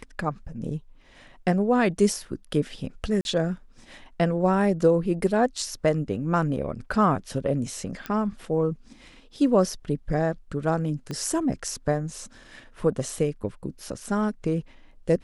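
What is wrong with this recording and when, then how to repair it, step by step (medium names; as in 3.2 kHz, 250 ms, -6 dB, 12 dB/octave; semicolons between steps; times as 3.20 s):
3.21–3.25 s: dropout 41 ms
8.06 s: pop -17 dBFS
11.11 s: pop -20 dBFS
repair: de-click; interpolate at 3.21 s, 41 ms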